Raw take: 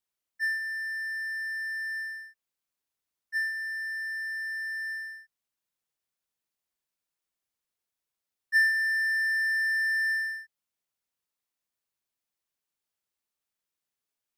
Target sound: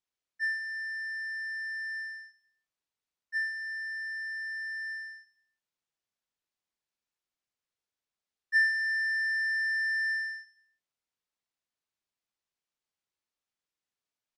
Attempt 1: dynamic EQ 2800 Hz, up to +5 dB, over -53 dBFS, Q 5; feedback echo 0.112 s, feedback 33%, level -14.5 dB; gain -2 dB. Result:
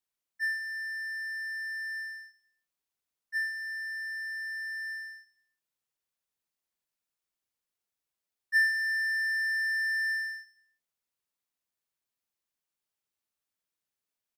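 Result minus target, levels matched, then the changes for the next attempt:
8000 Hz band +6.5 dB
add after dynamic EQ: LPF 6800 Hz 12 dB/oct

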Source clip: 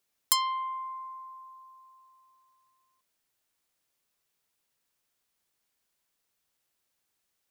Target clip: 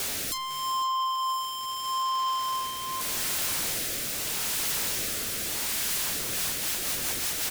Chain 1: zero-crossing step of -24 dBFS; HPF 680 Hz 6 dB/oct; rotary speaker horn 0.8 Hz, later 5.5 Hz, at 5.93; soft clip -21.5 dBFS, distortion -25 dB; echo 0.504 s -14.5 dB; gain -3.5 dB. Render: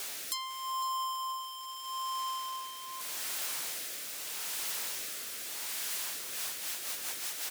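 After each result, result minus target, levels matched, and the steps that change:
500 Hz band -4.0 dB; zero-crossing step: distortion -4 dB
remove: HPF 680 Hz 6 dB/oct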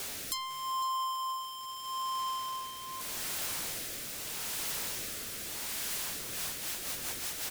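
zero-crossing step: distortion -4 dB
change: zero-crossing step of -14 dBFS

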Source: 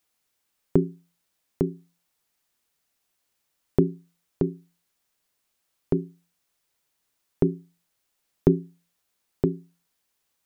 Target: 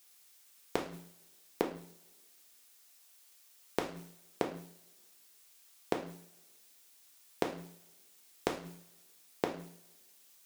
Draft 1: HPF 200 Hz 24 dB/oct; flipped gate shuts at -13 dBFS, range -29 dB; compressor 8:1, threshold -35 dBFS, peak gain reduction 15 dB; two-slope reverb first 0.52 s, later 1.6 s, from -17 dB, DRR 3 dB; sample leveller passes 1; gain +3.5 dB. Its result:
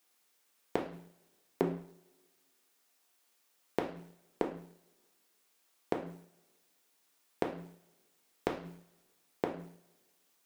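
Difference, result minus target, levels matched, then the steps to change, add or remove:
4000 Hz band -6.5 dB
add after HPF: high shelf 2100 Hz +11.5 dB

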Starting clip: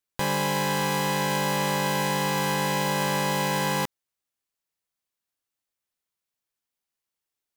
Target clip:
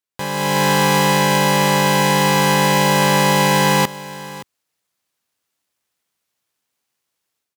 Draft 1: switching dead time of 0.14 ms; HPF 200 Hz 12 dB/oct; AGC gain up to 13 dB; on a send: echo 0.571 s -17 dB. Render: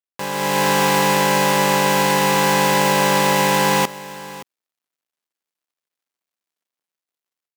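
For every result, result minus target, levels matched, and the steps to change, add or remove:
switching dead time: distortion +9 dB; 125 Hz band -4.5 dB
change: switching dead time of 0.027 ms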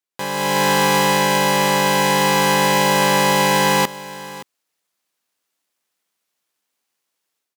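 125 Hz band -5.0 dB
change: HPF 76 Hz 12 dB/oct

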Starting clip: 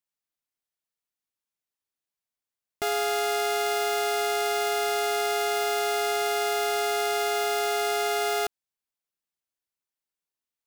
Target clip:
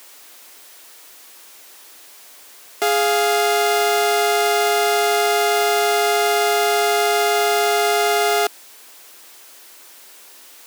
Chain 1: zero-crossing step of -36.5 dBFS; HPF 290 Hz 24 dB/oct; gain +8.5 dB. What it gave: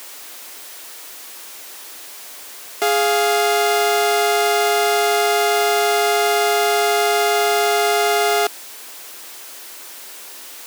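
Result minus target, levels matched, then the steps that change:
zero-crossing step: distortion +7 dB
change: zero-crossing step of -44 dBFS

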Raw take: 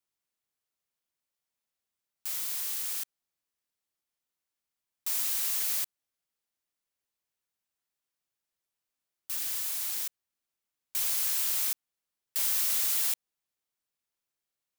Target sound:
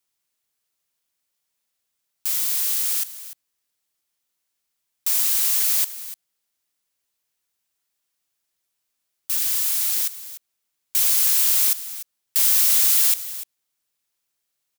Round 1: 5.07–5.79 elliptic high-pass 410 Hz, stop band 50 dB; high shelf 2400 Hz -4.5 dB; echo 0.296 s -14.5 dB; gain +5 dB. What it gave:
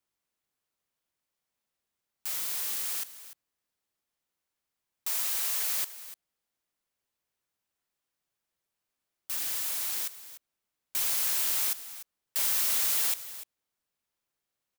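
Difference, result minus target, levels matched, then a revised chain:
2000 Hz band +5.5 dB
5.07–5.79 elliptic high-pass 410 Hz, stop band 50 dB; high shelf 2400 Hz +6 dB; echo 0.296 s -14.5 dB; gain +5 dB

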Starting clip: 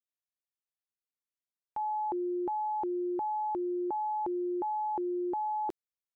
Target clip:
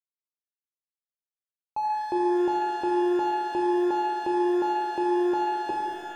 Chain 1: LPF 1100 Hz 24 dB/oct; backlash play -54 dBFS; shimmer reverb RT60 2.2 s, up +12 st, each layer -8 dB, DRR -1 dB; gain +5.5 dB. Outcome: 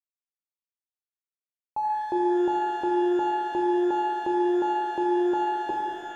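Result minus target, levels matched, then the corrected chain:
backlash: distortion -11 dB
LPF 1100 Hz 24 dB/oct; backlash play -43 dBFS; shimmer reverb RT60 2.2 s, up +12 st, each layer -8 dB, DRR -1 dB; gain +5.5 dB

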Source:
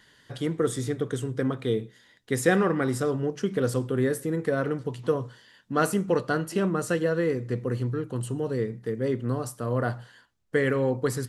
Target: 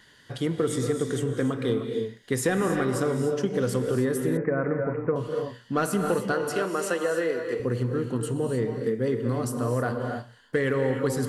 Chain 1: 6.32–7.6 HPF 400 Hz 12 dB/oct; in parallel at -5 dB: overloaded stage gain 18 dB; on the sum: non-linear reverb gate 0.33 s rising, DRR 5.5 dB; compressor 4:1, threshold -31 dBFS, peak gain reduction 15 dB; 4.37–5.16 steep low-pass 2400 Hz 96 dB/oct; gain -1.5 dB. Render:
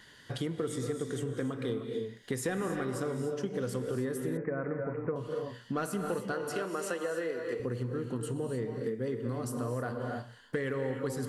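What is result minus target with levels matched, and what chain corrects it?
compressor: peak gain reduction +8.5 dB
6.32–7.6 HPF 400 Hz 12 dB/oct; in parallel at -5 dB: overloaded stage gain 18 dB; on the sum: non-linear reverb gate 0.33 s rising, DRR 5.5 dB; compressor 4:1, threshold -19.5 dBFS, peak gain reduction 6.5 dB; 4.37–5.16 steep low-pass 2400 Hz 96 dB/oct; gain -1.5 dB

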